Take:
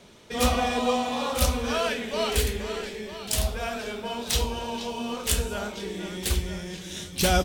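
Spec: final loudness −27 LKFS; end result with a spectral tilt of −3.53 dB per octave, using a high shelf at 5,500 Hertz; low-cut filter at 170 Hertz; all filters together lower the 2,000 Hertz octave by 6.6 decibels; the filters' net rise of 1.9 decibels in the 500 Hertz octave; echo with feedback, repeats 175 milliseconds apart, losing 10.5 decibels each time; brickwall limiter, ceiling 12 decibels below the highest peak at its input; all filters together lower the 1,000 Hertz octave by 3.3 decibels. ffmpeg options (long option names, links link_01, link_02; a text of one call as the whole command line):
ffmpeg -i in.wav -af "highpass=170,equalizer=frequency=500:width_type=o:gain=4,equalizer=frequency=1000:width_type=o:gain=-5.5,equalizer=frequency=2000:width_type=o:gain=-7,highshelf=frequency=5500:gain=-4,alimiter=limit=-19dB:level=0:latency=1,aecho=1:1:175|350|525:0.299|0.0896|0.0269,volume=4dB" out.wav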